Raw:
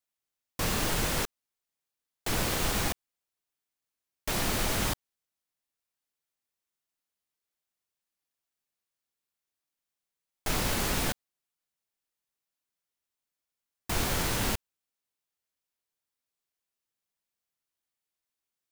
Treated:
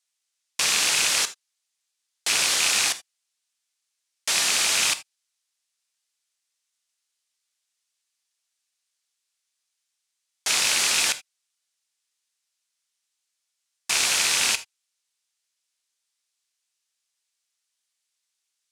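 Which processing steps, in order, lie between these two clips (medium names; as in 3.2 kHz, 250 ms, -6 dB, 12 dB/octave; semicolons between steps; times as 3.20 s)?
rattle on loud lows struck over -31 dBFS, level -20 dBFS; frequency weighting ITU-R 468; reverberation, pre-delay 3 ms, DRR 12 dB; trim +1.5 dB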